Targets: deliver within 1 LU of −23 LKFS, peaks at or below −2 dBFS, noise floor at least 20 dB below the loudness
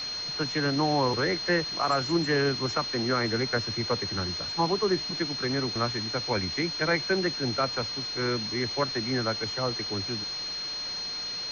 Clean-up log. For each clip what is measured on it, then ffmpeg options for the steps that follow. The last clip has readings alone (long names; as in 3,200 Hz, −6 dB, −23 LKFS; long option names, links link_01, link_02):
interfering tone 4,200 Hz; level of the tone −32 dBFS; background noise floor −35 dBFS; target noise floor −48 dBFS; integrated loudness −27.5 LKFS; sample peak −14.0 dBFS; target loudness −23.0 LKFS
→ -af "bandreject=frequency=4200:width=30"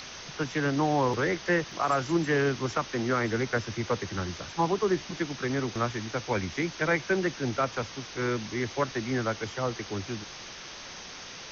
interfering tone none found; background noise floor −43 dBFS; target noise floor −50 dBFS
→ -af "afftdn=noise_reduction=7:noise_floor=-43"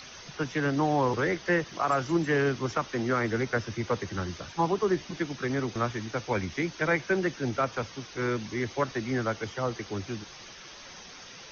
background noise floor −47 dBFS; target noise floor −50 dBFS
→ -af "afftdn=noise_reduction=6:noise_floor=-47"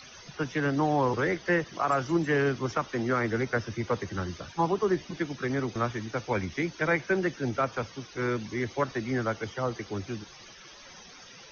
background noise floor −50 dBFS; integrated loudness −29.5 LKFS; sample peak −14.5 dBFS; target loudness −23.0 LKFS
→ -af "volume=6.5dB"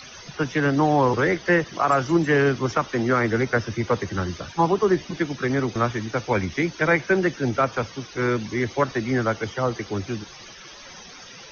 integrated loudness −23.0 LKFS; sample peak −8.0 dBFS; background noise floor −43 dBFS